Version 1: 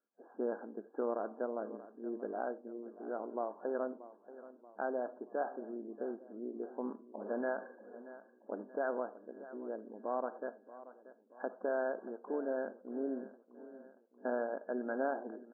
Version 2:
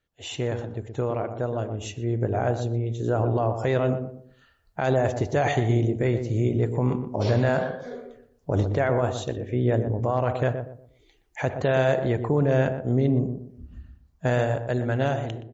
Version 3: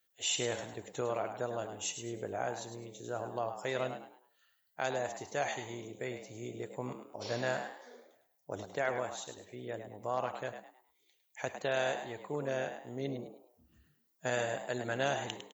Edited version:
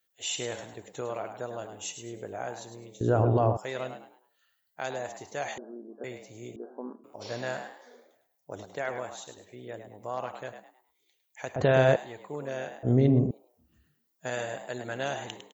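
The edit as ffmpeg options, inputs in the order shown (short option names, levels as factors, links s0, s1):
-filter_complex "[1:a]asplit=3[s0][s1][s2];[0:a]asplit=2[s3][s4];[2:a]asplit=6[s5][s6][s7][s8][s9][s10];[s5]atrim=end=3.012[s11];[s0]atrim=start=3.008:end=3.572[s12];[s6]atrim=start=3.568:end=5.582[s13];[s3]atrim=start=5.578:end=6.042[s14];[s7]atrim=start=6.038:end=6.562[s15];[s4]atrim=start=6.558:end=7.042[s16];[s8]atrim=start=7.038:end=11.562[s17];[s1]atrim=start=11.558:end=11.962[s18];[s9]atrim=start=11.958:end=12.832[s19];[s2]atrim=start=12.828:end=13.312[s20];[s10]atrim=start=13.308[s21];[s11][s12]acrossfade=d=0.004:c1=hsin:c2=hsin[s22];[s22][s13]acrossfade=d=0.004:c1=hsin:c2=hsin[s23];[s23][s14]acrossfade=d=0.004:c1=hsin:c2=hsin[s24];[s24][s15]acrossfade=d=0.004:c1=hsin:c2=hsin[s25];[s25][s16]acrossfade=d=0.004:c1=hsin:c2=hsin[s26];[s26][s17]acrossfade=d=0.004:c1=hsin:c2=hsin[s27];[s27][s18]acrossfade=d=0.004:c1=hsin:c2=hsin[s28];[s28][s19]acrossfade=d=0.004:c1=hsin:c2=hsin[s29];[s29][s20]acrossfade=d=0.004:c1=hsin:c2=hsin[s30];[s30][s21]acrossfade=d=0.004:c1=hsin:c2=hsin"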